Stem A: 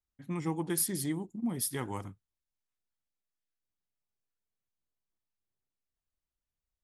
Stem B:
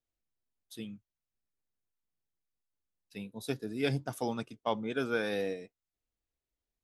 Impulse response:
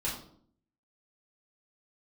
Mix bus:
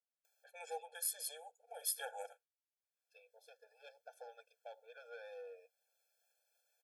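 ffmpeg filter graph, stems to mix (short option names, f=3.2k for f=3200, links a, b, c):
-filter_complex "[0:a]agate=range=-20dB:threshold=-52dB:ratio=16:detection=peak,acompressor=mode=upward:threshold=-43dB:ratio=2.5,adelay=250,volume=-0.5dB[a];[1:a]asoftclip=type=tanh:threshold=-31dB,acompressor=threshold=-42dB:ratio=2.5,lowpass=f=2.9k:p=1,volume=-7dB,asplit=2[b][c];[c]apad=whole_len=312232[d];[a][d]sidechaincompress=threshold=-54dB:ratio=8:attack=5.3:release=719[e];[e][b]amix=inputs=2:normalize=0,afftfilt=real='re*eq(mod(floor(b*sr/1024/450),2),1)':imag='im*eq(mod(floor(b*sr/1024/450),2),1)':win_size=1024:overlap=0.75"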